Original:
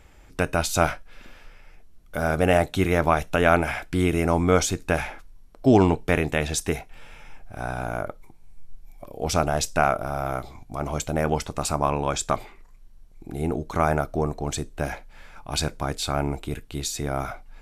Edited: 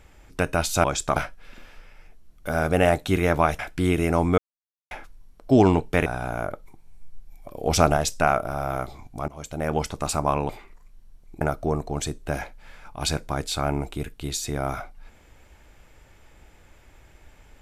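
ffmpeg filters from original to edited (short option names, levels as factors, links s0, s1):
-filter_complex "[0:a]asplit=12[s0][s1][s2][s3][s4][s5][s6][s7][s8][s9][s10][s11];[s0]atrim=end=0.842[s12];[s1]atrim=start=12.048:end=12.372[s13];[s2]atrim=start=0.838:end=3.272[s14];[s3]atrim=start=3.738:end=4.53,asetpts=PTS-STARTPTS,afade=t=out:st=0.788:d=0.004:c=hsin[s15];[s4]atrim=start=4.53:end=5.06,asetpts=PTS-STARTPTS,volume=0[s16];[s5]atrim=start=5.06:end=6.212,asetpts=PTS-STARTPTS,afade=t=in:d=0.004:c=hsin[s17];[s6]atrim=start=7.618:end=9.112[s18];[s7]atrim=start=9.108:end=9.532,asetpts=PTS-STARTPTS,volume=1.58[s19];[s8]atrim=start=9.528:end=10.84,asetpts=PTS-STARTPTS,afade=t=out:st=1.308:d=0.004:c=hsin:silence=0.112202[s20];[s9]atrim=start=10.84:end=12.052,asetpts=PTS-STARTPTS,afade=t=in:d=0.55:silence=0.112202[s21];[s10]atrim=start=12.368:end=13.292[s22];[s11]atrim=start=13.918[s23];[s12][s13]acrossfade=d=0.004:c1=hsin:c2=hsin[s24];[s24][s14]acrossfade=d=0.004:c1=hsin:c2=hsin[s25];[s15][s16][s17]concat=n=3:v=0:a=1[s26];[s25][s26]acrossfade=d=0.004:c1=hsin:c2=hsin[s27];[s27][s18]acrossfade=d=0.004:c1=hsin:c2=hsin[s28];[s28][s19]acrossfade=d=0.004:c1=hsin:c2=hsin[s29];[s20][s21]concat=n=2:v=0:a=1[s30];[s29][s30]acrossfade=d=0.004:c1=hsin:c2=hsin[s31];[s31][s22]acrossfade=d=0.004:c1=hsin:c2=hsin[s32];[s32][s23]acrossfade=d=0.004:c1=hsin:c2=hsin"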